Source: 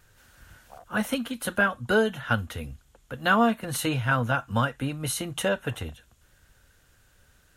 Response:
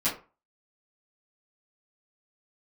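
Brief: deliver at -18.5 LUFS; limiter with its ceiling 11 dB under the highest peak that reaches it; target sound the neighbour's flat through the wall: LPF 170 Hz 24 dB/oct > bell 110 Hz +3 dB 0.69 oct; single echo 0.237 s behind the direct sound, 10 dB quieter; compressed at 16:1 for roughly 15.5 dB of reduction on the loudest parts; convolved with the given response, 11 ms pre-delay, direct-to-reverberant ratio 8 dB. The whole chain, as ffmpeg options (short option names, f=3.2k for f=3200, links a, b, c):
-filter_complex "[0:a]acompressor=threshold=-32dB:ratio=16,alimiter=level_in=6.5dB:limit=-24dB:level=0:latency=1,volume=-6.5dB,aecho=1:1:237:0.316,asplit=2[a][b];[1:a]atrim=start_sample=2205,adelay=11[c];[b][c]afir=irnorm=-1:irlink=0,volume=-17dB[d];[a][d]amix=inputs=2:normalize=0,lowpass=f=170:w=0.5412,lowpass=f=170:w=1.3066,equalizer=f=110:t=o:w=0.69:g=3,volume=26.5dB"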